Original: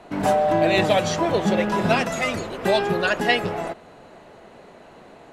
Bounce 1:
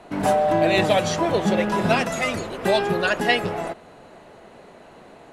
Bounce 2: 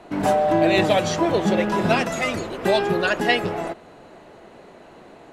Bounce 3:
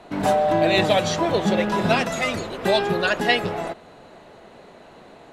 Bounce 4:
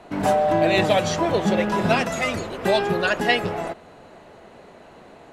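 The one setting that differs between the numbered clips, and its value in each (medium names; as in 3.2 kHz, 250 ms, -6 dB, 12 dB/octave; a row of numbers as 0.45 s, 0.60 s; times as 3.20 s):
peaking EQ, frequency: 9.9 kHz, 330 Hz, 3.8 kHz, 79 Hz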